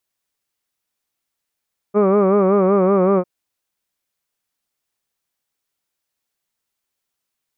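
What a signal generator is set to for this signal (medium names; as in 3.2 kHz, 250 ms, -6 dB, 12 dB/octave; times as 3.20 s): formant vowel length 1.30 s, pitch 200 Hz, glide -1 st, F1 480 Hz, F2 1.2 kHz, F3 2.3 kHz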